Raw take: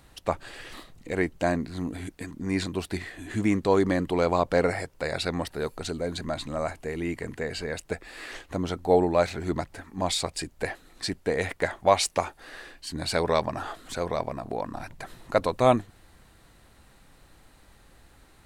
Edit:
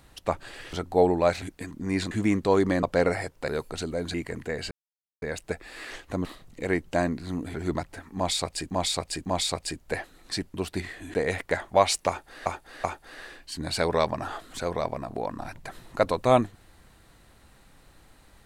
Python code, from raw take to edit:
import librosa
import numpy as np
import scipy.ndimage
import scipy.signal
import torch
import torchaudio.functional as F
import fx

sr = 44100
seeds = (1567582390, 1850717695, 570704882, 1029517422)

y = fx.edit(x, sr, fx.swap(start_s=0.73, length_s=1.29, other_s=8.66, other_length_s=0.69),
    fx.move(start_s=2.71, length_s=0.6, to_s=11.25),
    fx.cut(start_s=4.03, length_s=0.38),
    fx.cut(start_s=5.06, length_s=0.49),
    fx.cut(start_s=6.21, length_s=0.85),
    fx.insert_silence(at_s=7.63, length_s=0.51),
    fx.repeat(start_s=9.97, length_s=0.55, count=3),
    fx.repeat(start_s=12.19, length_s=0.38, count=3), tone=tone)